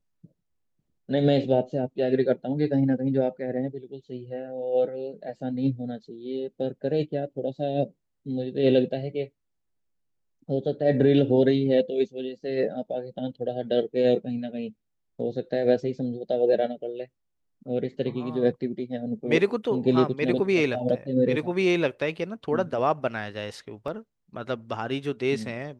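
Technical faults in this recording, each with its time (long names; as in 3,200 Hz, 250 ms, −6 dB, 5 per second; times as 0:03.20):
0:23.88: drop-out 2.1 ms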